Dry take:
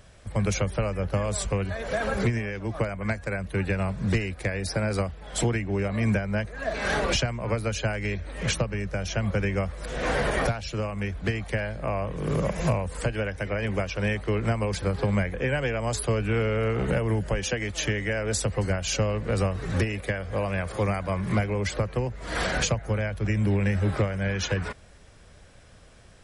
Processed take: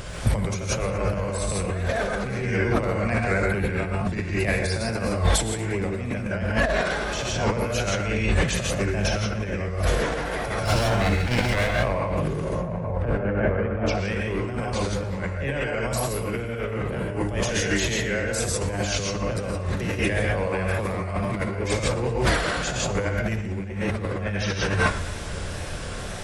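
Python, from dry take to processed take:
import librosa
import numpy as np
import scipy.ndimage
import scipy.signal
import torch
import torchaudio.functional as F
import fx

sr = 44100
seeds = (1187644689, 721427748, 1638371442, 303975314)

p1 = fx.lower_of_two(x, sr, delay_ms=1.4, at=(10.64, 11.75))
p2 = fx.lowpass(p1, sr, hz=1300.0, slope=12, at=(12.44, 13.87))
p3 = p2 + fx.echo_feedback(p2, sr, ms=61, feedback_pct=38, wet_db=-13.0, dry=0)
p4 = fx.wow_flutter(p3, sr, seeds[0], rate_hz=2.1, depth_cents=130.0)
p5 = fx.rev_gated(p4, sr, seeds[1], gate_ms=190, shape='rising', drr_db=-1.5)
p6 = fx.over_compress(p5, sr, threshold_db=-33.0, ratio=-1.0)
p7 = fx.echo_warbled(p6, sr, ms=117, feedback_pct=66, rate_hz=2.8, cents=70, wet_db=-19)
y = p7 * librosa.db_to_amplitude(7.5)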